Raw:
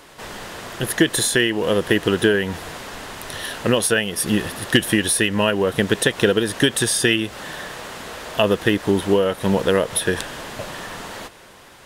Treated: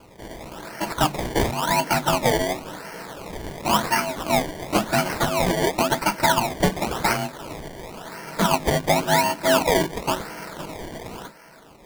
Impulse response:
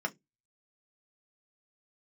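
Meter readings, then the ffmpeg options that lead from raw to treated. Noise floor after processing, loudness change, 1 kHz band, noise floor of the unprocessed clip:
-48 dBFS, -3.0 dB, +7.5 dB, -46 dBFS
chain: -filter_complex "[0:a]aeval=exprs='val(0)*sin(2*PI*460*n/s)':c=same,asuperstop=centerf=1100:order=4:qfactor=5.7[a];[1:a]atrim=start_sample=2205[b];[a][b]afir=irnorm=-1:irlink=0,acrusher=samples=23:mix=1:aa=0.000001:lfo=1:lforange=23:lforate=0.94,volume=-3.5dB"

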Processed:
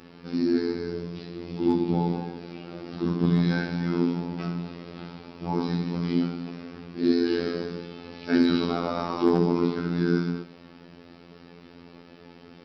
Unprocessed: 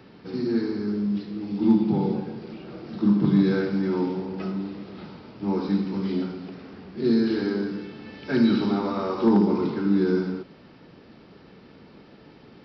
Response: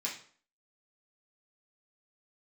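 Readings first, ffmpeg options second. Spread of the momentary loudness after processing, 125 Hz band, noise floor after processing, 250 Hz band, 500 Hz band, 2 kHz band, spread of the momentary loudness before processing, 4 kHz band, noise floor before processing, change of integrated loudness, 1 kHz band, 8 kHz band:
17 LU, +0.5 dB, -50 dBFS, -3.0 dB, -1.0 dB, +1.0 dB, 18 LU, +2.0 dB, -51 dBFS, -2.0 dB, +0.5 dB, n/a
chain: -filter_complex "[0:a]asplit=2[a][b];[1:a]atrim=start_sample=2205,highshelf=f=3.1k:g=11[c];[b][c]afir=irnorm=-1:irlink=0,volume=-12.5dB[d];[a][d]amix=inputs=2:normalize=0,afftfilt=real='hypot(re,im)*cos(PI*b)':imag='0':win_size=2048:overlap=0.75,volume=3.5dB"

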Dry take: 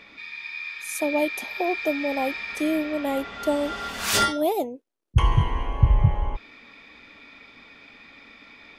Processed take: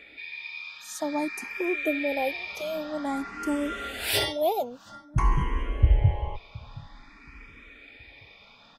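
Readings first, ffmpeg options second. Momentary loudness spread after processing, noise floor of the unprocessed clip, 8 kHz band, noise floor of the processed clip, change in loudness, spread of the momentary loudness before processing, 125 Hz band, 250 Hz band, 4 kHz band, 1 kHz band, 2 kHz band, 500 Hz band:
23 LU, -51 dBFS, -6.5 dB, -53 dBFS, -3.5 dB, 12 LU, -3.5 dB, -4.0 dB, -2.0 dB, -4.0 dB, -3.0 dB, -3.5 dB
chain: -filter_complex "[0:a]asplit=2[a][b];[b]adelay=723,lowpass=f=2.3k:p=1,volume=-21.5dB,asplit=2[c][d];[d]adelay=723,lowpass=f=2.3k:p=1,volume=0.38,asplit=2[e][f];[f]adelay=723,lowpass=f=2.3k:p=1,volume=0.38[g];[a][c][e][g]amix=inputs=4:normalize=0,asplit=2[h][i];[i]afreqshift=0.51[j];[h][j]amix=inputs=2:normalize=1"

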